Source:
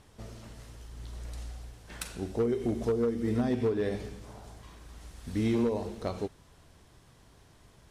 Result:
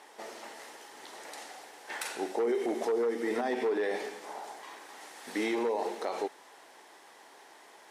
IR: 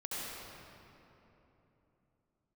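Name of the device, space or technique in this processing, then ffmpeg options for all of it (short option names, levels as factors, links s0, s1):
laptop speaker: -af "highpass=f=340:w=0.5412,highpass=f=340:w=1.3066,equalizer=f=840:t=o:w=0.35:g=10,equalizer=f=1900:t=o:w=0.53:g=7,alimiter=level_in=1.58:limit=0.0631:level=0:latency=1:release=29,volume=0.631,volume=1.88"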